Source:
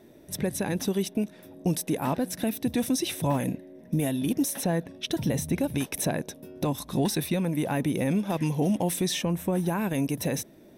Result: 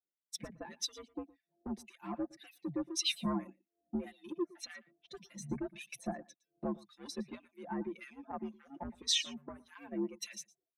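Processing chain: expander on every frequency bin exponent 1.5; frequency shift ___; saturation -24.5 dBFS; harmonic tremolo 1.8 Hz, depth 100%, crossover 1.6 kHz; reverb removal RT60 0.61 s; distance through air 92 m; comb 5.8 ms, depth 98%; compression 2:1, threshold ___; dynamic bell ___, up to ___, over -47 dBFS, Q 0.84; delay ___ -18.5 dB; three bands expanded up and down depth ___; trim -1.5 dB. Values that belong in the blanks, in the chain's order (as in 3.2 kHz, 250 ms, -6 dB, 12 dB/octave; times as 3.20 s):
+66 Hz, -33 dBFS, 500 Hz, -7 dB, 116 ms, 100%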